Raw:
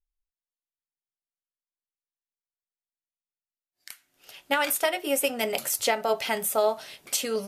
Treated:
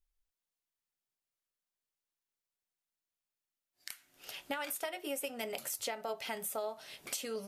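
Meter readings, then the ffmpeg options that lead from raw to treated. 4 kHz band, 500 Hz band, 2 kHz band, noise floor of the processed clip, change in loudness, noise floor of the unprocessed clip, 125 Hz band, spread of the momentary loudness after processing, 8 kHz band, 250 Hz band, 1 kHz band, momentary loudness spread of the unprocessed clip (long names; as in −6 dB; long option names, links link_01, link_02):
−11.5 dB, −13.5 dB, −13.0 dB, below −85 dBFS, −13.5 dB, below −85 dBFS, can't be measured, 11 LU, −11.5 dB, −11.0 dB, −13.5 dB, 4 LU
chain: -af "acompressor=threshold=-44dB:ratio=3,volume=2.5dB"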